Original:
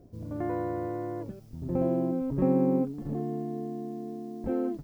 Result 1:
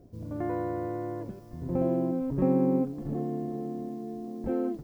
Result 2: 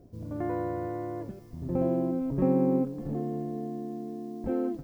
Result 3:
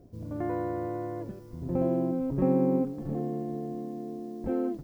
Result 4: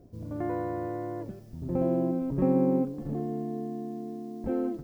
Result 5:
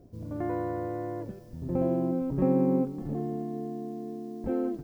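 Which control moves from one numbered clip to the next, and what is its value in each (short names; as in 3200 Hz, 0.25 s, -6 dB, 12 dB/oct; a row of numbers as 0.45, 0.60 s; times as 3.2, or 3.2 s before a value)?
multi-head echo, time: 370, 147, 222, 63, 97 ms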